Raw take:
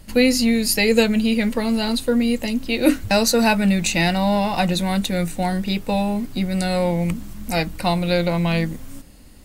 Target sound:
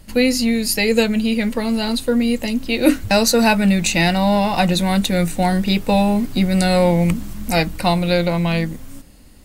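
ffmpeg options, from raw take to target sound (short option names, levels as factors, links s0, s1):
-af "dynaudnorm=f=320:g=13:m=3.76"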